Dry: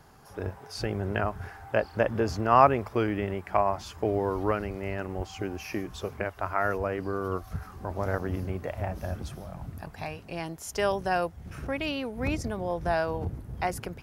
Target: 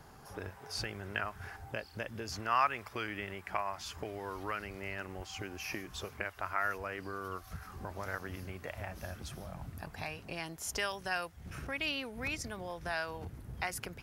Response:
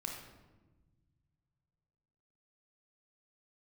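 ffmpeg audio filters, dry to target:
-filter_complex "[0:a]asettb=1/sr,asplit=3[a][b][c];[a]atrim=end=1.564[d];[b]atrim=start=1.56:end=2.32,asetpts=PTS-STARTPTS,afade=t=in:d=0.004:c=qsin,afade=t=out:st=0.756:d=0.004:c=qsin,equalizer=f=1.3k:t=o:w=2.2:g=-8.5[e];[c]atrim=start=2.316[f];[d][e]acrossfade=d=0.004:c1=hsin:c2=qsin[g];[g][f]acrossfade=d=0.004:c1=qsin:c2=hsin,acrossover=split=1300[h][i];[h]acompressor=threshold=-41dB:ratio=6[j];[j][i]amix=inputs=2:normalize=0"

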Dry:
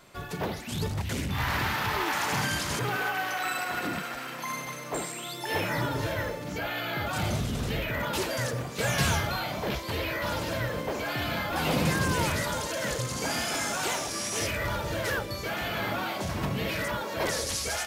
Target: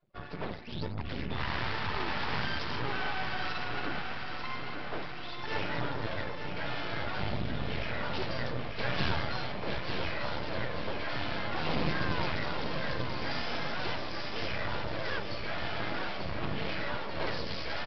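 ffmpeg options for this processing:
-af "afftdn=nr=29:nf=-45,acontrast=46,aresample=11025,aeval=exprs='max(val(0),0)':c=same,aresample=44100,aecho=1:1:890|1780|2670|3560|4450|5340|6230:0.447|0.25|0.14|0.0784|0.0439|0.0246|0.0138,volume=-7dB"

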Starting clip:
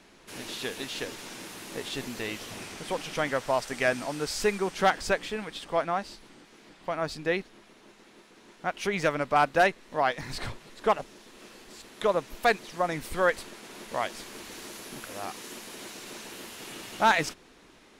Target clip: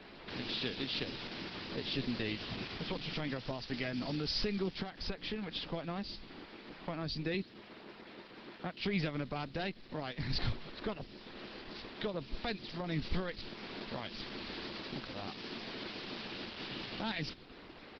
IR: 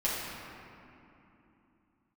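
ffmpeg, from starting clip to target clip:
-filter_complex "[0:a]asplit=2[a][b];[b]asoftclip=type=tanh:threshold=-30.5dB,volume=-7dB[c];[a][c]amix=inputs=2:normalize=0,alimiter=limit=-18.5dB:level=0:latency=1:release=140,asplit=3[d][e][f];[d]afade=t=out:st=4.7:d=0.02[g];[e]acompressor=threshold=-31dB:ratio=16,afade=t=in:st=4.7:d=0.02,afade=t=out:st=5.56:d=0.02[h];[f]afade=t=in:st=5.56:d=0.02[i];[g][h][i]amix=inputs=3:normalize=0,asettb=1/sr,asplit=3[j][k][l];[j]atrim=end=7.344[m];[k]atrim=start=7.34:end=8.8,asetpts=PTS-STARTPTS,afade=t=in:d=0.004:c=qsin,afade=t=out:st=1.456:d=0.004:c=qsin,highpass=f=94:w=0.5412,highpass=f=94:w=1.3066[n];[l]atrim=start=8.796[o];[m][n]acrossfade=d=0.004:c1=hsin:c2=qsin[p];[p][o]acrossfade=d=0.004:c1=qsin:c2=hsin,aresample=11025,aresample=44100,acrossover=split=300|3000[q][r][s];[r]acompressor=threshold=-48dB:ratio=3[t];[q][t][s]amix=inputs=3:normalize=0,volume=1.5dB" -ar 48000 -c:a libopus -b:a 12k

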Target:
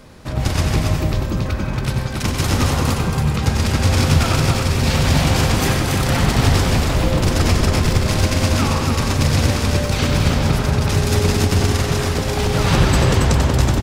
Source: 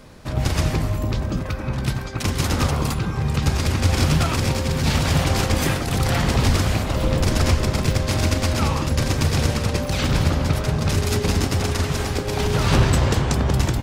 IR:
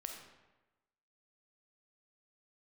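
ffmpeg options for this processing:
-filter_complex "[0:a]aecho=1:1:276:0.631,asplit=2[a][b];[1:a]atrim=start_sample=2205,asetrate=61740,aresample=44100,adelay=94[c];[b][c]afir=irnorm=-1:irlink=0,volume=-1dB[d];[a][d]amix=inputs=2:normalize=0,volume=1.5dB"

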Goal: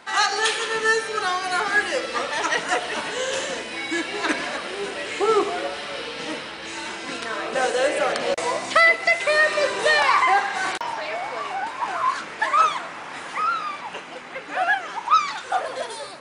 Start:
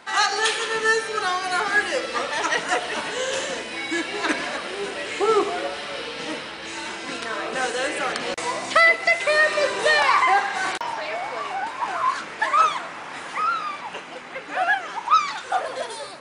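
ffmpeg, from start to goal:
-filter_complex "[0:a]asettb=1/sr,asplit=3[a][b][c];[a]atrim=end=7.554[d];[b]atrim=start=7.55:end=8.57,asetpts=PTS-STARTPTS,afade=t=in:d=0.004:c=qsin,afade=t=out:st=1.016:d=0.004:c=qsin,equalizer=f=590:w=2.6:g=9.5[e];[c]atrim=start=8.566[f];[d][e]acrossfade=d=0.004:c1=hsin:c2=qsin[g];[g][f]acrossfade=d=0.004:c1=qsin:c2=hsin"

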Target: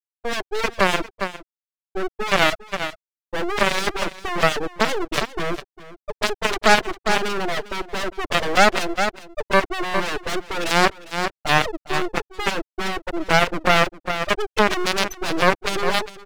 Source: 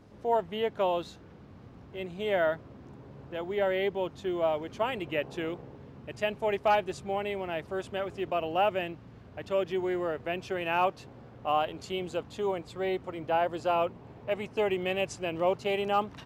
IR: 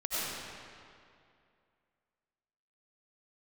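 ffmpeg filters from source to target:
-filter_complex "[0:a]highpass=f=320:w=0.5412,highpass=f=320:w=1.3066,agate=range=-8dB:threshold=-43dB:ratio=16:detection=peak,afftfilt=real='re*gte(hypot(re,im),0.0708)':imag='im*gte(hypot(re,im),0.0708)':win_size=1024:overlap=0.75,dynaudnorm=f=100:g=9:m=15.5dB,aeval=exprs='0.794*(cos(1*acos(clip(val(0)/0.794,-1,1)))-cos(1*PI/2))+0.158*(cos(8*acos(clip(val(0)/0.794,-1,1)))-cos(8*PI/2))':c=same,aeval=exprs='max(val(0),0)':c=same,asplit=2[a][b];[b]aecho=0:1:403:0.141[c];[a][c]amix=inputs=2:normalize=0,alimiter=level_in=14dB:limit=-1dB:release=50:level=0:latency=1,volume=-1dB"

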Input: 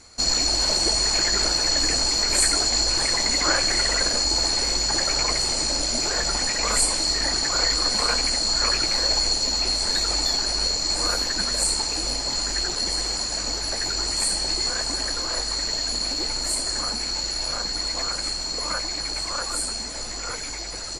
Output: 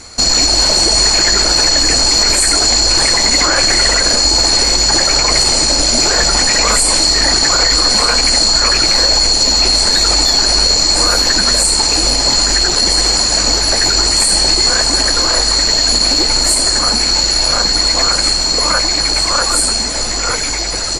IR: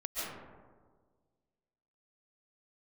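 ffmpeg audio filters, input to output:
-af "alimiter=level_in=15.5dB:limit=-1dB:release=50:level=0:latency=1,volume=-1dB"

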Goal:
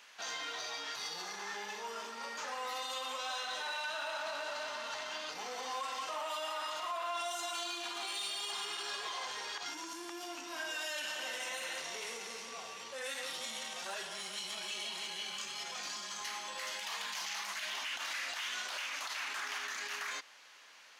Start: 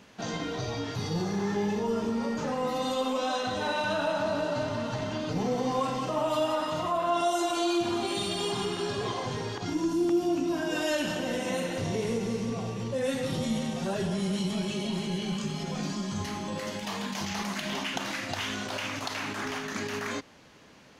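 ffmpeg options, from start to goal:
-filter_complex "[0:a]asplit=2[a][b];[b]asoftclip=type=hard:threshold=-33dB,volume=-3.5dB[c];[a][c]amix=inputs=2:normalize=0,highpass=1.2k,alimiter=level_in=3dB:limit=-24dB:level=0:latency=1:release=49,volume=-3dB,volume=-3dB"

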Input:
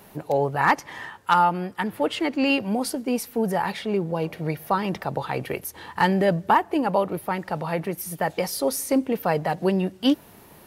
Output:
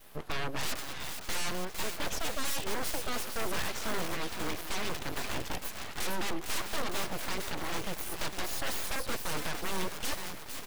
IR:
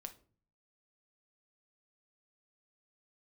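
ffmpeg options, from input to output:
-filter_complex "[0:a]equalizer=f=3.4k:t=o:w=1.4:g=3.5,asplit=2[a][b];[1:a]atrim=start_sample=2205,asetrate=79380,aresample=44100[c];[b][c]afir=irnorm=-1:irlink=0,volume=-5dB[d];[a][d]amix=inputs=2:normalize=0,adynamicequalizer=threshold=0.0251:dfrequency=710:dqfactor=1.1:tfrequency=710:tqfactor=1.1:attack=5:release=100:ratio=0.375:range=2.5:mode=cutabove:tftype=bell,aeval=exprs='(mod(10*val(0)+1,2)-1)/10':c=same,asplit=2[e][f];[f]asplit=6[g][h][i][j][k][l];[g]adelay=456,afreqshift=59,volume=-8.5dB[m];[h]adelay=912,afreqshift=118,volume=-13.9dB[n];[i]adelay=1368,afreqshift=177,volume=-19.2dB[o];[j]adelay=1824,afreqshift=236,volume=-24.6dB[p];[k]adelay=2280,afreqshift=295,volume=-29.9dB[q];[l]adelay=2736,afreqshift=354,volume=-35.3dB[r];[m][n][o][p][q][r]amix=inputs=6:normalize=0[s];[e][s]amix=inputs=2:normalize=0,aeval=exprs='abs(val(0))':c=same,volume=-4.5dB"

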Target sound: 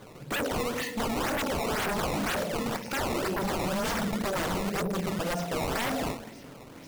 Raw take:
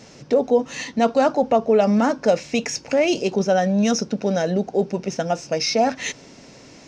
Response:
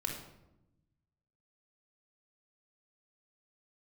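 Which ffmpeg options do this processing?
-filter_complex "[0:a]asplit=2[a][b];[1:a]atrim=start_sample=2205[c];[b][c]afir=irnorm=-1:irlink=0,volume=-1.5dB[d];[a][d]amix=inputs=2:normalize=0,acrusher=samples=16:mix=1:aa=0.000001:lfo=1:lforange=25.6:lforate=2,aeval=exprs='0.15*(abs(mod(val(0)/0.15+3,4)-2)-1)':c=same,volume=-8dB"

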